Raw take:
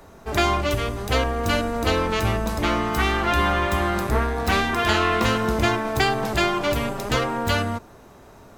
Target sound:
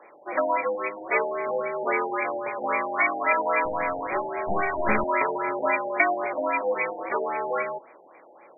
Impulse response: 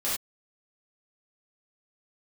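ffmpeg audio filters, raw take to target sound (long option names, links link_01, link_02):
-filter_complex "[0:a]aexciter=amount=4.9:drive=9.9:freq=2500,highpass=frequency=500:width_type=q:width=0.5412,highpass=frequency=500:width_type=q:width=1.307,lowpass=frequency=3600:width_type=q:width=0.5176,lowpass=frequency=3600:width_type=q:width=0.7071,lowpass=frequency=3600:width_type=q:width=1.932,afreqshift=-78,asettb=1/sr,asplit=3[link_01][link_02][link_03];[link_01]atrim=end=3.654[link_04];[link_02]atrim=start=3.65:end=5.04,asetpts=PTS-STARTPTS,afade=type=in:duration=0.004:curve=qsin,afade=type=out:start_time=1.386:duration=0.004:curve=qsin,aeval=exprs='clip(val(0),-1,0.0891)':channel_layout=same[link_05];[link_03]atrim=start=5.036[link_06];[link_04][link_05]acrossfade=duration=0.004:curve1=hsin:curve2=qsin[link_07];[link_07][link_06]acrossfade=duration=0.004:curve1=qsin:curve2=hsin,asplit=2[link_08][link_09];[1:a]atrim=start_sample=2205,asetrate=70560,aresample=44100[link_10];[link_09][link_10]afir=irnorm=-1:irlink=0,volume=-24dB[link_11];[link_08][link_11]amix=inputs=2:normalize=0,afftfilt=real='re*lt(b*sr/1024,880*pow(2500/880,0.5+0.5*sin(2*PI*3.7*pts/sr)))':imag='im*lt(b*sr/1024,880*pow(2500/880,0.5+0.5*sin(2*PI*3.7*pts/sr)))':win_size=1024:overlap=0.75"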